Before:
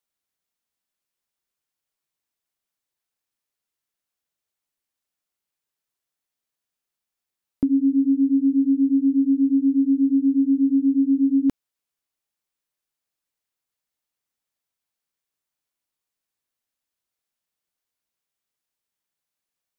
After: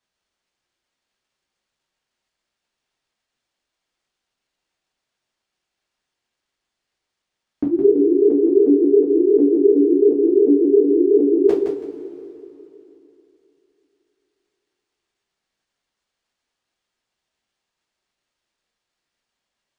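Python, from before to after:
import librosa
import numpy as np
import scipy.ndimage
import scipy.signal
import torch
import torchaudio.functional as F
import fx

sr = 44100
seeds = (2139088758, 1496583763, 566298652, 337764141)

y = fx.pitch_ramps(x, sr, semitones=9.0, every_ms=361)
y = fx.highpass(y, sr, hz=130.0, slope=6)
y = fx.echo_feedback(y, sr, ms=165, feedback_pct=23, wet_db=-6.0)
y = fx.rev_double_slope(y, sr, seeds[0], early_s=0.26, late_s=3.2, knee_db=-20, drr_db=-6.5)
y = np.interp(np.arange(len(y)), np.arange(len(y))[::3], y[::3])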